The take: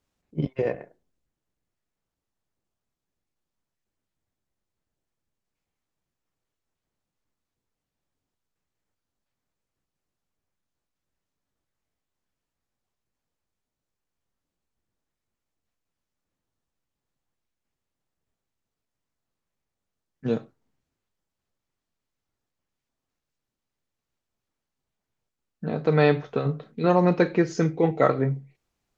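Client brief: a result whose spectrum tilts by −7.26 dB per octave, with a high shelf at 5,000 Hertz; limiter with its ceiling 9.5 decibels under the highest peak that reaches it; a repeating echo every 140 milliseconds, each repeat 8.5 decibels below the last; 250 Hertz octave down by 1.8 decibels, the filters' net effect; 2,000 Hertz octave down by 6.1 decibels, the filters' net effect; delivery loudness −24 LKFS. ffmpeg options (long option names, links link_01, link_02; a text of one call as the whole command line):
ffmpeg -i in.wav -af "equalizer=frequency=250:width_type=o:gain=-3,equalizer=frequency=2000:width_type=o:gain=-8.5,highshelf=frequency=5000:gain=5,alimiter=limit=-17dB:level=0:latency=1,aecho=1:1:140|280|420|560:0.376|0.143|0.0543|0.0206,volume=5dB" out.wav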